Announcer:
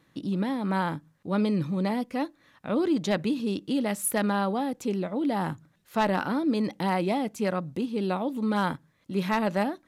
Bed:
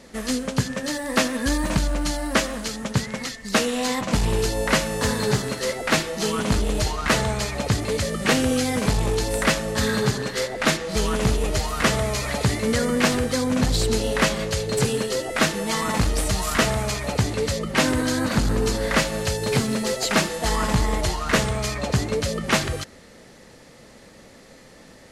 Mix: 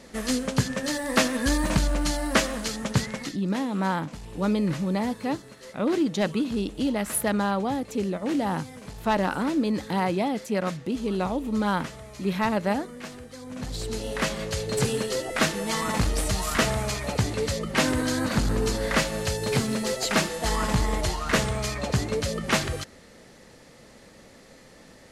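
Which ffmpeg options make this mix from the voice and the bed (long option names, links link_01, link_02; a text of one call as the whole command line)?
ffmpeg -i stem1.wav -i stem2.wav -filter_complex "[0:a]adelay=3100,volume=1dB[link_01];[1:a]volume=15.5dB,afade=type=out:start_time=3.04:duration=0.41:silence=0.11885,afade=type=in:start_time=13.38:duration=1.44:silence=0.149624[link_02];[link_01][link_02]amix=inputs=2:normalize=0" out.wav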